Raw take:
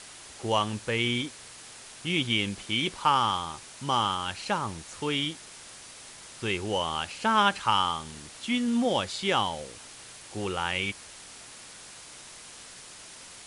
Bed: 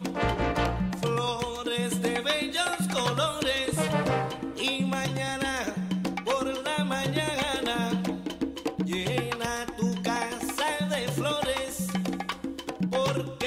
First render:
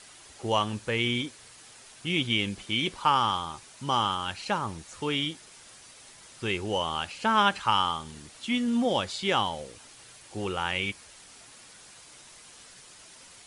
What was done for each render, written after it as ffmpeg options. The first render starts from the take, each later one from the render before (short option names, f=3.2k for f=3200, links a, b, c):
-af "afftdn=nr=6:nf=-47"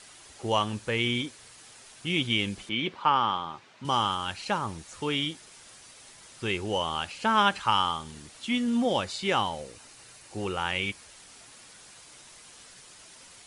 -filter_complex "[0:a]asettb=1/sr,asplit=3[a][b][c];[a]atrim=end=2.694[d];[b]atrim=start=2.69:end=3.85,asetpts=PTS-STARTPTS,afade=t=in:d=0.004:c=qsin,afade=t=out:st=1.156:d=0.004:c=qsin,highpass=140,lowpass=3.1k[e];[c]atrim=start=3.846[f];[d][e]acrossfade=d=0.004:c1=hsin:c2=qsin[g];[g][f]acrossfade=d=0.004:c1=qsin:c2=hsin,asettb=1/sr,asplit=3[h][i][j];[h]atrim=end=8.974[k];[i]atrim=start=8.97:end=10.59,asetpts=PTS-STARTPTS,afade=t=in:d=0.004:c=qsin,afade=t=out:st=1.616:d=0.004:c=qsin,bandreject=f=3.3k:w=11[l];[j]atrim=start=10.586[m];[k][l]acrossfade=d=0.004:c1=hsin:c2=qsin[n];[n][m]acrossfade=d=0.004:c1=qsin:c2=hsin"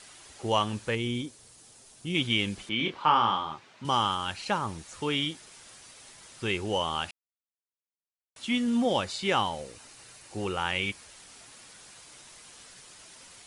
-filter_complex "[0:a]asettb=1/sr,asplit=3[a][b][c];[a]atrim=end=0.954[d];[b]atrim=start=0.95:end=2.15,asetpts=PTS-STARTPTS,afade=t=in:d=0.004:c=qsin,afade=t=out:st=1.196:d=0.004:c=qsin,equalizer=f=1.9k:w=0.51:g=-10.5[e];[c]atrim=start=2.146[f];[d][e]acrossfade=d=0.004:c1=hsin:c2=qsin[g];[g][f]acrossfade=d=0.004:c1=qsin:c2=hsin,asettb=1/sr,asplit=3[h][i][j];[h]atrim=end=2.774[k];[i]atrim=start=2.77:end=3.54,asetpts=PTS-STARTPTS,afade=t=in:d=0.004:c=qsin,afade=t=out:st=0.766:d=0.004:c=qsin,asplit=2[l][m];[m]adelay=26,volume=-5dB[n];[l][n]amix=inputs=2:normalize=0,atrim=end_sample=33957[o];[j]atrim=start=3.536[p];[k][o]acrossfade=d=0.004:c1=hsin:c2=qsin[q];[q][p]acrossfade=d=0.004:c1=qsin:c2=hsin,asplit=3[r][s][t];[r]atrim=end=7.11,asetpts=PTS-STARTPTS,afade=t=out:st=7.106:d=0.004:c=hsin[u];[s]atrim=start=7.11:end=8.36,asetpts=PTS-STARTPTS,volume=0[v];[t]atrim=start=8.36,asetpts=PTS-STARTPTS,afade=t=in:d=0.004:c=hsin[w];[u][v][w]concat=n=3:v=0:a=1"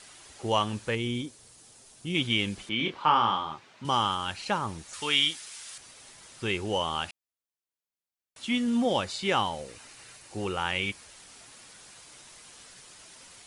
-filter_complex "[0:a]asettb=1/sr,asplit=3[a][b][c];[a]atrim=end=4.934[d];[b]atrim=start=4.93:end=5.78,asetpts=PTS-STARTPTS,afade=t=in:d=0.004:c=qsin,afade=t=out:st=0.846:d=0.004:c=qsin,tiltshelf=f=930:g=-8.5[e];[c]atrim=start=5.776[f];[d][e]acrossfade=d=0.004:c1=hsin:c2=qsin[g];[g][f]acrossfade=d=0.004:c1=qsin:c2=hsin,asettb=1/sr,asplit=3[h][i][j];[h]atrim=end=9.684[k];[i]atrim=start=9.68:end=10.17,asetpts=PTS-STARTPTS,afade=t=in:d=0.004:c=qsin,afade=t=out:st=0.486:d=0.004:c=qsin,equalizer=f=2.1k:t=o:w=1.4:g=4[l];[j]atrim=start=10.166[m];[k][l]acrossfade=d=0.004:c1=hsin:c2=qsin[n];[n][m]acrossfade=d=0.004:c1=qsin:c2=hsin"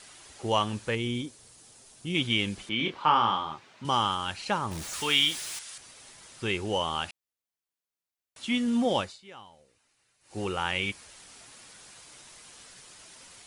-filter_complex "[0:a]asettb=1/sr,asplit=3[a][b][c];[a]atrim=end=4.714[d];[b]atrim=start=4.71:end=5.59,asetpts=PTS-STARTPTS,afade=t=in:d=0.004:c=qsin,afade=t=out:st=0.876:d=0.004:c=qsin,aeval=exprs='val(0)+0.5*0.0168*sgn(val(0))':c=same[e];[c]atrim=start=5.586[f];[d][e]acrossfade=d=0.004:c1=hsin:c2=qsin[g];[g][f]acrossfade=d=0.004:c1=qsin:c2=hsin,asplit=3[h][i][j];[h]atrim=end=9.23,asetpts=PTS-STARTPTS,afade=t=out:st=9.01:d=0.22:c=qua:silence=0.0841395[k];[i]atrim=start=9.23:end=10.16,asetpts=PTS-STARTPTS,volume=-21.5dB[l];[j]atrim=start=10.16,asetpts=PTS-STARTPTS,afade=t=in:d=0.22:c=qua:silence=0.0841395[m];[k][l][m]concat=n=3:v=0:a=1"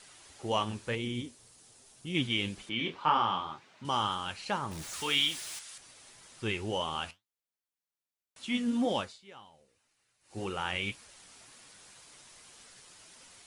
-af "flanger=delay=3.6:depth=9.4:regen=68:speed=1.9:shape=triangular"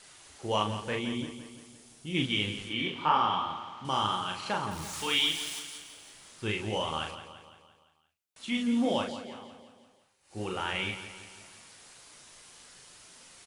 -filter_complex "[0:a]asplit=2[a][b];[b]adelay=38,volume=-4.5dB[c];[a][c]amix=inputs=2:normalize=0,asplit=2[d][e];[e]aecho=0:1:171|342|513|684|855|1026:0.266|0.144|0.0776|0.0419|0.0226|0.0122[f];[d][f]amix=inputs=2:normalize=0"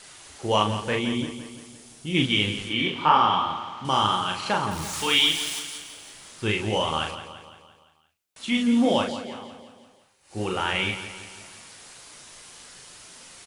-af "volume=7dB"